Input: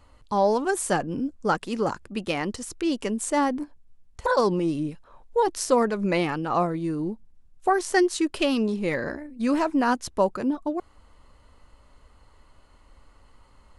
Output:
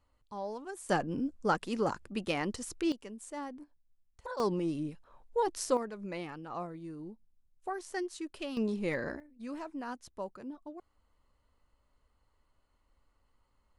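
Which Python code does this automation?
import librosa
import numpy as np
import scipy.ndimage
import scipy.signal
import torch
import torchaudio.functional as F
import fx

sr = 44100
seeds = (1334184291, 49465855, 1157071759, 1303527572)

y = fx.gain(x, sr, db=fx.steps((0.0, -18.0), (0.89, -5.5), (2.92, -18.0), (4.4, -8.0), (5.77, -16.0), (8.57, -7.0), (9.2, -18.0)))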